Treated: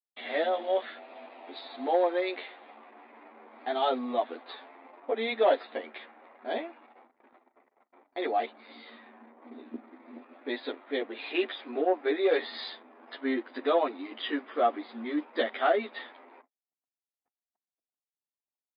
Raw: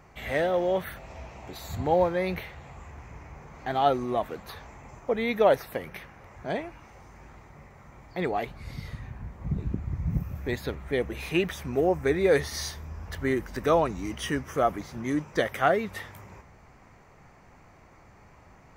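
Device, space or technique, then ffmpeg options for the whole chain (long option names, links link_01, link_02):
barber-pole flanger into a guitar amplifier: -filter_complex "[0:a]asplit=2[link_01][link_02];[link_02]adelay=10.6,afreqshift=0.34[link_03];[link_01][link_03]amix=inputs=2:normalize=1,asoftclip=type=tanh:threshold=-15.5dB,highpass=76,equalizer=frequency=140:width_type=q:width=4:gain=10,equalizer=frequency=710:width_type=q:width=4:gain=4,equalizer=frequency=3600:width_type=q:width=4:gain=9,lowpass=frequency=4200:width=0.5412,lowpass=frequency=4200:width=1.3066,anlmdn=0.00158,afftfilt=real='re*between(b*sr/4096,220,5000)':imag='im*between(b*sr/4096,220,5000)':win_size=4096:overlap=0.75,agate=range=-47dB:threshold=-56dB:ratio=16:detection=peak"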